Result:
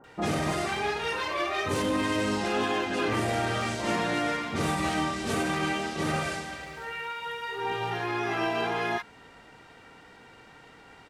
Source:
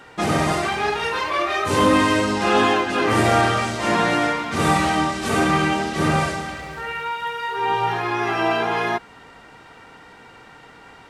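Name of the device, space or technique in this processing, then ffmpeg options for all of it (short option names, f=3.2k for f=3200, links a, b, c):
limiter into clipper: -filter_complex "[0:a]asettb=1/sr,asplit=3[a][b][c];[a]atrim=end=5.414[d];[b]atrim=start=5.41:end=7.26,asetpts=PTS-STARTPTS,afade=t=in:d=0.004:c=qsin,afade=t=out:st=1.846:d=0.004:c=qsin,lowshelf=f=280:g=-5.5[e];[c]atrim=start=7.256[f];[d][e]acrossfade=d=0.004:c1=hsin:c2=qsin[g];[g][f]acrossfade=d=0.004:c1=qsin:c2=hsin,alimiter=limit=-12dB:level=0:latency=1:release=77,asoftclip=type=hard:threshold=-14.5dB,acrossover=split=1100[h][i];[i]adelay=40[j];[h][j]amix=inputs=2:normalize=0,volume=-5.5dB"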